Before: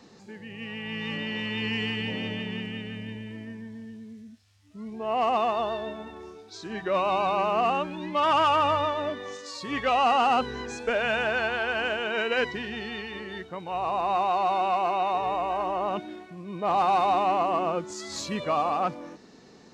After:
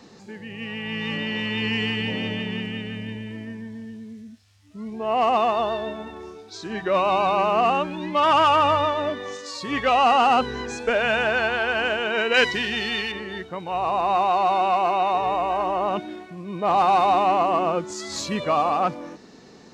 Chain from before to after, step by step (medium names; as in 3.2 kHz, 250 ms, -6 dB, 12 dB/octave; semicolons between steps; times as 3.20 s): 12.34–13.12 s: treble shelf 2.1 kHz +11.5 dB; trim +4.5 dB